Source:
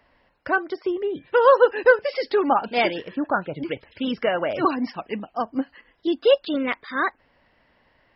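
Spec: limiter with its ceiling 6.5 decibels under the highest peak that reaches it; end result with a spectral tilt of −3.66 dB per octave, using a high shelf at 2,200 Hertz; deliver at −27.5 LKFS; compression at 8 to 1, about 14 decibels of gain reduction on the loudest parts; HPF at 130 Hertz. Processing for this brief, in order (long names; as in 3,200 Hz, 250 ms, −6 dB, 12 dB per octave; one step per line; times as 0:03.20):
high-pass filter 130 Hz
high-shelf EQ 2,200 Hz −6.5 dB
downward compressor 8 to 1, threshold −25 dBFS
level +5 dB
brickwall limiter −16.5 dBFS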